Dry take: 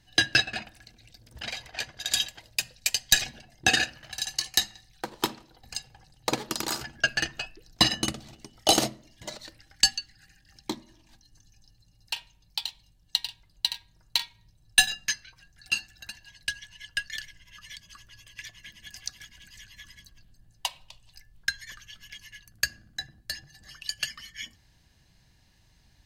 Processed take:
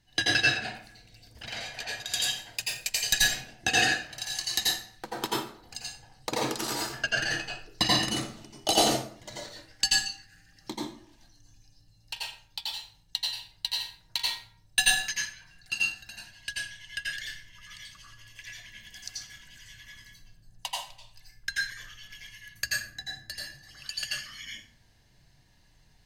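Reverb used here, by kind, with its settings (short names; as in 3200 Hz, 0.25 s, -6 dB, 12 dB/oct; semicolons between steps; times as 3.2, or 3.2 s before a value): plate-style reverb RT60 0.51 s, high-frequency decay 0.7×, pre-delay 75 ms, DRR -5.5 dB; gain -6 dB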